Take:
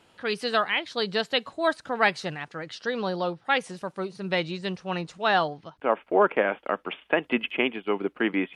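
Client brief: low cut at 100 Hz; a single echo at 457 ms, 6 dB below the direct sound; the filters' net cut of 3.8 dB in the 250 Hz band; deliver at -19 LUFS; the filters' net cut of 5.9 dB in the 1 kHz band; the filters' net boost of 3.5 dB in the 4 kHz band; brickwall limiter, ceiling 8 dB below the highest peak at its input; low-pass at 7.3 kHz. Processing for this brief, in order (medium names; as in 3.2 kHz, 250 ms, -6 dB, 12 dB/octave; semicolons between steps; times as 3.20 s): high-pass 100 Hz; low-pass 7.3 kHz; peaking EQ 250 Hz -4.5 dB; peaking EQ 1 kHz -8.5 dB; peaking EQ 4 kHz +5.5 dB; peak limiter -17 dBFS; delay 457 ms -6 dB; trim +11 dB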